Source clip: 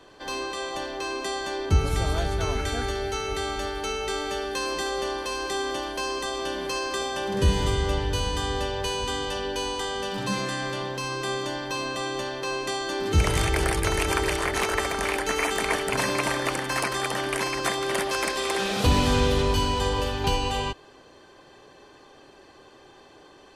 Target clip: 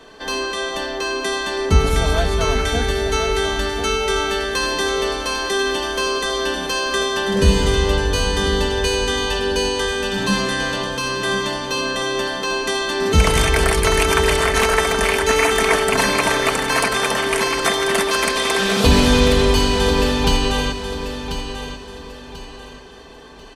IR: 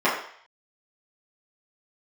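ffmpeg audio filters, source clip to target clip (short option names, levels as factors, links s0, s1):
-filter_complex "[0:a]aecho=1:1:4.5:0.5,asplit=2[s0][s1];[s1]aecho=0:1:1040|2080|3120|4160:0.335|0.111|0.0365|0.012[s2];[s0][s2]amix=inputs=2:normalize=0,volume=2.24"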